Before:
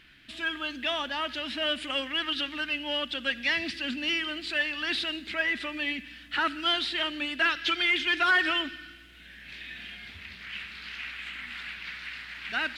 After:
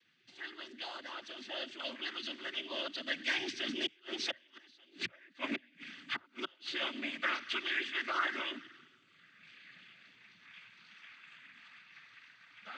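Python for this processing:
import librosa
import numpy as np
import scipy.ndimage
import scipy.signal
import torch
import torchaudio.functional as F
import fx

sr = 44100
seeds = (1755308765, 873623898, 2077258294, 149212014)

y = fx.doppler_pass(x, sr, speed_mps=20, closest_m=15.0, pass_at_s=4.96)
y = fx.gate_flip(y, sr, shuts_db=-25.0, range_db=-33)
y = fx.noise_vocoder(y, sr, seeds[0], bands=16)
y = F.gain(torch.from_numpy(y), 2.0).numpy()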